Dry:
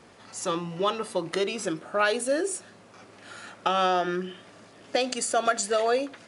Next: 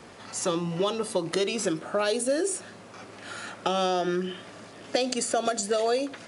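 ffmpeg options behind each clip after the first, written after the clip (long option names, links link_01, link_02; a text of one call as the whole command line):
ffmpeg -i in.wav -filter_complex "[0:a]acrossover=split=670|3700[link_01][link_02][link_03];[link_01]acompressor=threshold=-30dB:ratio=4[link_04];[link_02]acompressor=threshold=-41dB:ratio=4[link_05];[link_03]acompressor=threshold=-35dB:ratio=4[link_06];[link_04][link_05][link_06]amix=inputs=3:normalize=0,volume=5.5dB" out.wav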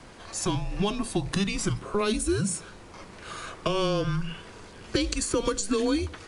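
ffmpeg -i in.wav -af "afreqshift=-200" out.wav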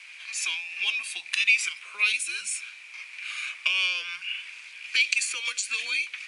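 ffmpeg -i in.wav -af "highpass=frequency=2400:width_type=q:width=9.9" out.wav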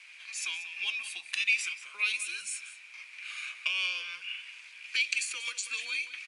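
ffmpeg -i in.wav -filter_complex "[0:a]asplit=2[link_01][link_02];[link_02]adelay=186.6,volume=-12dB,highshelf=frequency=4000:gain=-4.2[link_03];[link_01][link_03]amix=inputs=2:normalize=0,volume=-6dB" out.wav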